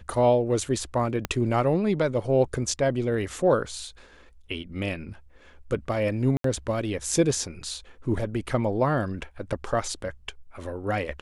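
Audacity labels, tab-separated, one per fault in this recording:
1.250000	1.250000	pop -12 dBFS
6.370000	6.440000	dropout 73 ms

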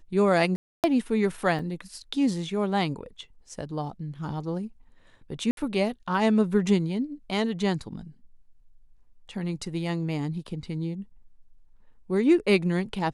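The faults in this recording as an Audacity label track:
0.560000	0.840000	dropout 278 ms
1.590000	1.590000	dropout 3.3 ms
5.510000	5.570000	dropout 62 ms

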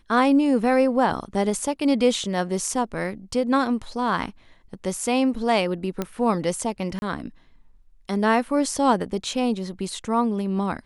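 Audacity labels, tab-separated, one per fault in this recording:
6.020000	6.020000	pop -12 dBFS
6.990000	7.020000	dropout 31 ms

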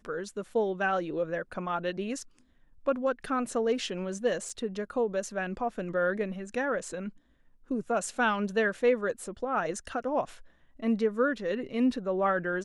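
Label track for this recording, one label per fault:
4.490000	4.490000	dropout 4.1 ms

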